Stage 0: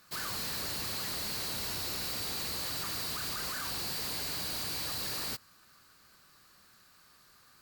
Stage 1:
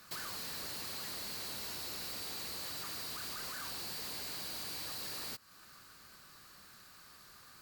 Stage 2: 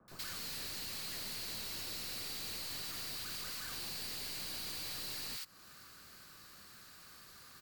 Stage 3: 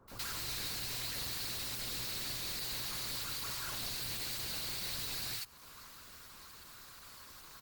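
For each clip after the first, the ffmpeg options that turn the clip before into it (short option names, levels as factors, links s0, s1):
-filter_complex "[0:a]acrossover=split=190|1600[s0][s1][s2];[s0]alimiter=level_in=16.8:limit=0.0631:level=0:latency=1:release=439,volume=0.0596[s3];[s3][s1][s2]amix=inputs=3:normalize=0,acompressor=threshold=0.00447:ratio=3,volume=1.58"
-filter_complex "[0:a]acrossover=split=180|1800|6200[s0][s1][s2][s3];[s1]alimiter=level_in=16.8:limit=0.0631:level=0:latency=1,volume=0.0596[s4];[s3]aeval=exprs='clip(val(0),-1,0.00335)':c=same[s5];[s0][s4][s2][s5]amix=inputs=4:normalize=0,acrossover=split=990[s6][s7];[s7]adelay=80[s8];[s6][s8]amix=inputs=2:normalize=0,volume=1.19"
-af "afreqshift=-120,volume=1.78" -ar 48000 -c:a libopus -b:a 16k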